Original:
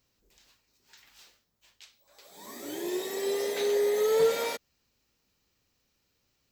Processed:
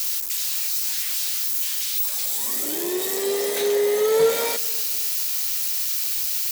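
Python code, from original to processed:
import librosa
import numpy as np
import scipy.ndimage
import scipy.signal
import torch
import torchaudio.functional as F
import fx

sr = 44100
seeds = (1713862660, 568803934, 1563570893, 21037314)

p1 = x + 0.5 * 10.0 ** (-24.5 / 20.0) * np.diff(np.sign(x), prepend=np.sign(x[:1]))
p2 = p1 + fx.echo_feedback(p1, sr, ms=253, feedback_pct=43, wet_db=-23.0, dry=0)
y = p2 * 10.0 ** (5.5 / 20.0)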